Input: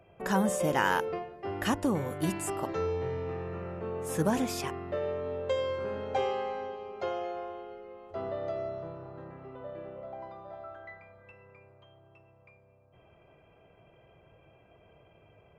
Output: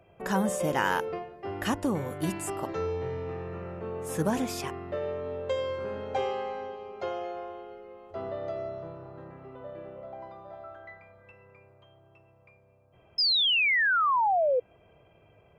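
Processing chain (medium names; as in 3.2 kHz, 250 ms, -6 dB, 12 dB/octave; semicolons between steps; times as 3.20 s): painted sound fall, 13.18–14.60 s, 480–5200 Hz -24 dBFS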